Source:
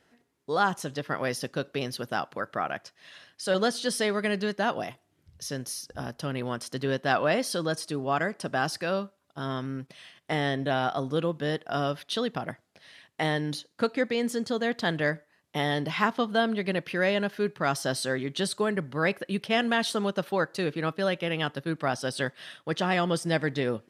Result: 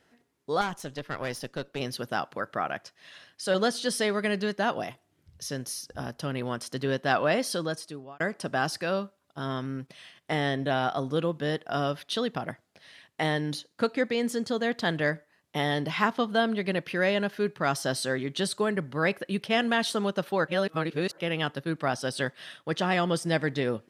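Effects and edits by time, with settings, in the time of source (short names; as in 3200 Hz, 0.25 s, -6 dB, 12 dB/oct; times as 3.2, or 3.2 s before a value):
0.61–1.8 tube stage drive 24 dB, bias 0.75
7.53–8.2 fade out
20.48–21.18 reverse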